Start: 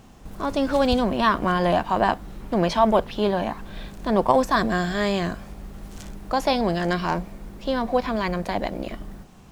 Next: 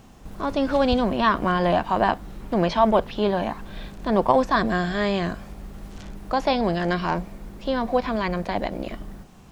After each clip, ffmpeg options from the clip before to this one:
-filter_complex "[0:a]acrossover=split=5300[s0][s1];[s1]acompressor=threshold=0.00178:ratio=4:attack=1:release=60[s2];[s0][s2]amix=inputs=2:normalize=0"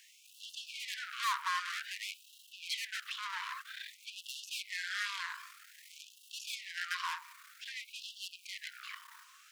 -af "aeval=exprs='(tanh(35.5*val(0)+0.5)-tanh(0.5))/35.5':c=same,afftfilt=real='re*gte(b*sr/1024,900*pow(2700/900,0.5+0.5*sin(2*PI*0.52*pts/sr)))':imag='im*gte(b*sr/1024,900*pow(2700/900,0.5+0.5*sin(2*PI*0.52*pts/sr)))':win_size=1024:overlap=0.75,volume=1.33"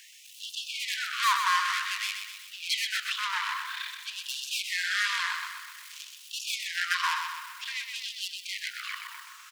-af "aecho=1:1:126|252|378|504|630|756|882:0.473|0.251|0.133|0.0704|0.0373|0.0198|0.0105,volume=2.66"

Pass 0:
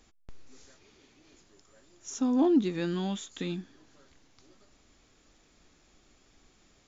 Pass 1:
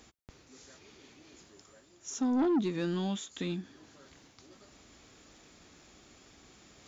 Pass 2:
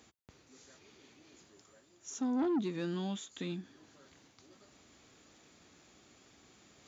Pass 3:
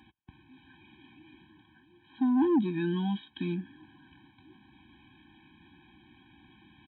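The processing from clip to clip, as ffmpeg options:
-af "highpass=63,areverse,acompressor=mode=upward:threshold=0.00355:ratio=2.5,areverse,asoftclip=type=tanh:threshold=0.0668"
-af "highpass=75,bandreject=f=5300:w=25,volume=0.631"
-af "aresample=8000,aresample=44100,afftfilt=real='re*eq(mod(floor(b*sr/1024/370),2),0)':imag='im*eq(mod(floor(b*sr/1024/370),2),0)':win_size=1024:overlap=0.75,volume=2.37"

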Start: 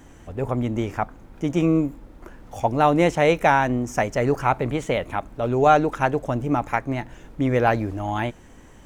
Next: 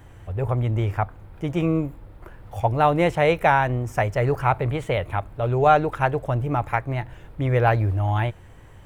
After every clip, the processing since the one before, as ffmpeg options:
-af "equalizer=f=100:t=o:w=0.67:g=11,equalizer=f=250:t=o:w=0.67:g=-10,equalizer=f=6300:t=o:w=0.67:g=-11"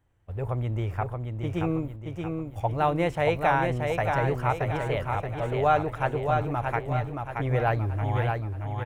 -af "agate=range=0.126:threshold=0.02:ratio=16:detection=peak,aecho=1:1:626|1252|1878|2504|3130|3756:0.596|0.268|0.121|0.0543|0.0244|0.011,volume=0.501"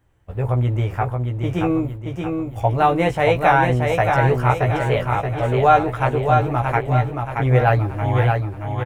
-filter_complex "[0:a]asplit=2[s0][s1];[s1]adelay=16,volume=0.631[s2];[s0][s2]amix=inputs=2:normalize=0,volume=2.11"

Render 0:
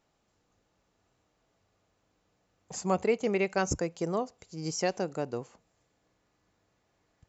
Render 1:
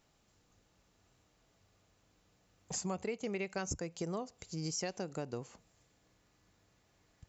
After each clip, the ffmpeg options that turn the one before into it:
-af "equalizer=f=650:w=0.35:g=-6,acompressor=threshold=0.00794:ratio=4,volume=1.88"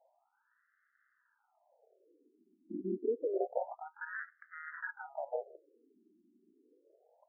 -filter_complex "[0:a]asplit=2[s0][s1];[s1]highpass=f=720:p=1,volume=3.55,asoftclip=type=tanh:threshold=0.0794[s2];[s0][s2]amix=inputs=2:normalize=0,lowpass=f=2500:p=1,volume=0.501,acrusher=samples=40:mix=1:aa=0.000001,afftfilt=real='re*between(b*sr/1024,270*pow(1600/270,0.5+0.5*sin(2*PI*0.28*pts/sr))/1.41,270*pow(1600/270,0.5+0.5*sin(2*PI*0.28*pts/sr))*1.41)':imag='im*between(b*sr/1024,270*pow(1600/270,0.5+0.5*sin(2*PI*0.28*pts/sr))/1.41,270*pow(1600/270,0.5+0.5*sin(2*PI*0.28*pts/sr))*1.41)':win_size=1024:overlap=0.75,volume=2.24"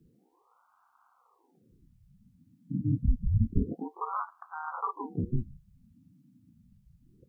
-af "afreqshift=-490,volume=2.82"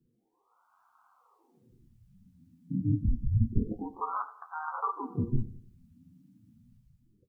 -af "dynaudnorm=f=160:g=7:m=3.35,flanger=delay=8.1:depth=3.9:regen=42:speed=0.59:shape=sinusoidal,aecho=1:1:94|188|282|376:0.141|0.065|0.0299|0.0137,volume=0.531"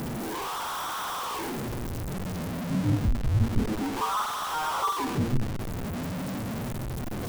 -af "aeval=exprs='val(0)+0.5*0.0473*sgn(val(0))':c=same"

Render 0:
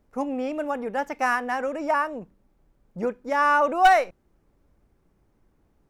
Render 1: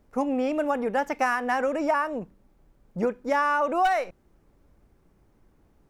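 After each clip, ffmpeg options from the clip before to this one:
-af "acompressor=threshold=0.0708:ratio=12,volume=1.5"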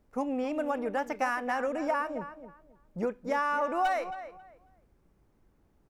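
-filter_complex "[0:a]asplit=2[s0][s1];[s1]adelay=271,lowpass=f=2600:p=1,volume=0.266,asplit=2[s2][s3];[s3]adelay=271,lowpass=f=2600:p=1,volume=0.23,asplit=2[s4][s5];[s5]adelay=271,lowpass=f=2600:p=1,volume=0.23[s6];[s0][s2][s4][s6]amix=inputs=4:normalize=0,volume=0.531"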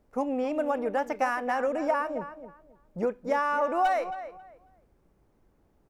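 -af "equalizer=f=580:w=0.85:g=4"

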